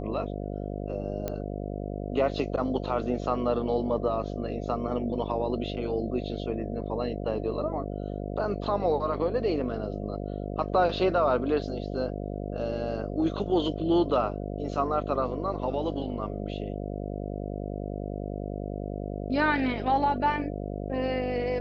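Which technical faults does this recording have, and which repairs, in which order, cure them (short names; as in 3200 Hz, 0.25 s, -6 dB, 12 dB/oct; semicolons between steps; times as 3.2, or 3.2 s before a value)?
buzz 50 Hz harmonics 14 -34 dBFS
1.28 pop -17 dBFS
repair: de-click; de-hum 50 Hz, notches 14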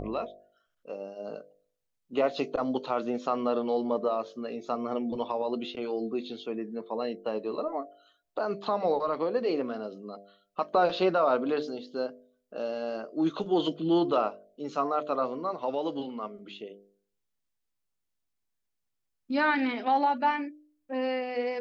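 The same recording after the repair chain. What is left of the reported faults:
none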